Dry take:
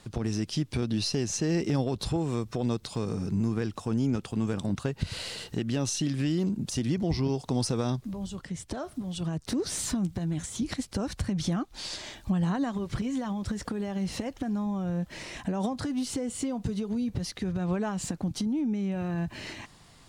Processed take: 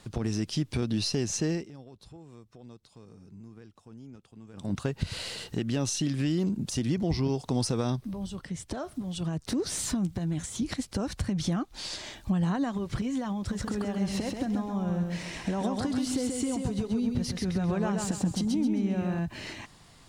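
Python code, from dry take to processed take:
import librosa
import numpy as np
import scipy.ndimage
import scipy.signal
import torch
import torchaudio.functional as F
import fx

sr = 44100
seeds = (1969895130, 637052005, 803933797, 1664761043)

y = fx.notch(x, sr, hz=7000.0, q=7.2, at=(7.74, 8.52))
y = fx.echo_feedback(y, sr, ms=133, feedback_pct=34, wet_db=-4, at=(13.39, 19.19))
y = fx.edit(y, sr, fx.fade_down_up(start_s=1.46, length_s=3.29, db=-20.0, fade_s=0.22), tone=tone)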